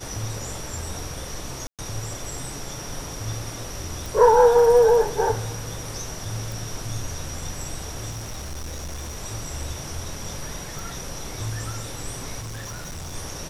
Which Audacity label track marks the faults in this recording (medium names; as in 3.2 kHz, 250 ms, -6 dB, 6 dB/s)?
1.670000	1.790000	dropout 117 ms
4.060000	4.060000	pop
6.520000	6.520000	pop
8.100000	9.170000	clipped -29 dBFS
10.790000	10.790000	pop
12.400000	13.160000	clipped -31 dBFS